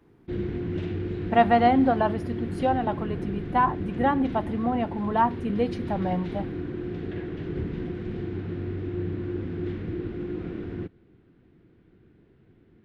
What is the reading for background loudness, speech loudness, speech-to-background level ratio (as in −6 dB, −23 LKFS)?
−33.0 LKFS, −25.5 LKFS, 7.5 dB